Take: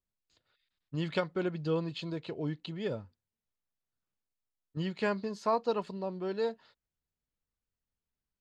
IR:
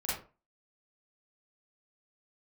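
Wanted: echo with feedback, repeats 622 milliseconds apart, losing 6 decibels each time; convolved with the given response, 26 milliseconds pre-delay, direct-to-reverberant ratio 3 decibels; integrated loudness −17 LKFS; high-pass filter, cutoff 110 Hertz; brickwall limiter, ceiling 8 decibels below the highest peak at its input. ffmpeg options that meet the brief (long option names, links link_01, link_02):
-filter_complex "[0:a]highpass=110,alimiter=limit=-24dB:level=0:latency=1,aecho=1:1:622|1244|1866|2488|3110|3732:0.501|0.251|0.125|0.0626|0.0313|0.0157,asplit=2[link_01][link_02];[1:a]atrim=start_sample=2205,adelay=26[link_03];[link_02][link_03]afir=irnorm=-1:irlink=0,volume=-8dB[link_04];[link_01][link_04]amix=inputs=2:normalize=0,volume=18.5dB"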